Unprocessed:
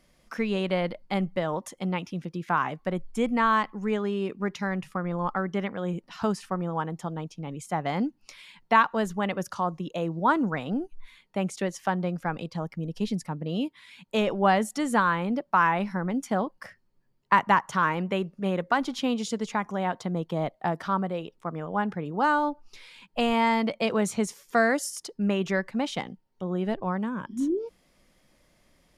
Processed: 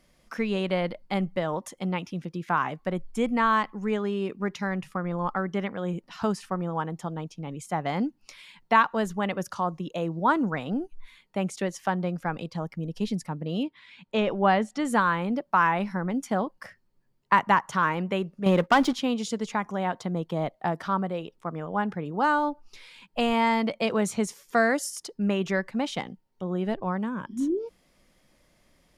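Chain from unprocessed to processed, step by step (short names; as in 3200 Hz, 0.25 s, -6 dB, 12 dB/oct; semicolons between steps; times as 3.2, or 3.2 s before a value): 13.63–14.85 LPF 4300 Hz 12 dB/oct; 18.46–18.93 sample leveller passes 2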